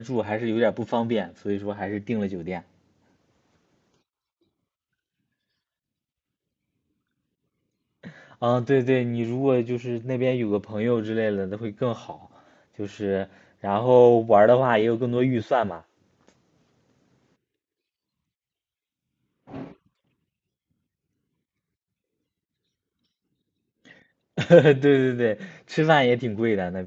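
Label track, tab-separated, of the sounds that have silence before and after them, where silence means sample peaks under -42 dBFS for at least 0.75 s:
8.040000	16.290000	sound
19.480000	19.720000	sound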